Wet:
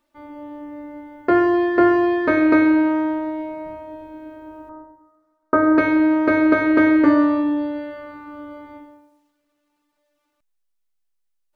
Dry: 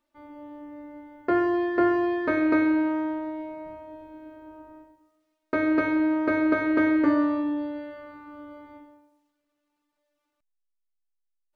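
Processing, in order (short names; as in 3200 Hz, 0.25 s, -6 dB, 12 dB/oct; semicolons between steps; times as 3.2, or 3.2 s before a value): 4.69–5.78 resonant high shelf 1800 Hz -12.5 dB, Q 3; gain +7 dB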